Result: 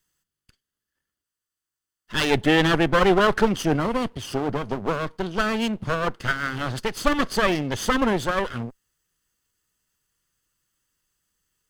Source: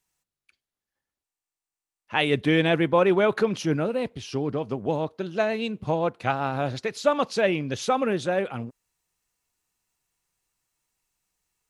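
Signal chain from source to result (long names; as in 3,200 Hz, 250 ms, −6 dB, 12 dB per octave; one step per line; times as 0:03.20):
lower of the sound and its delayed copy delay 0.64 ms
level +5 dB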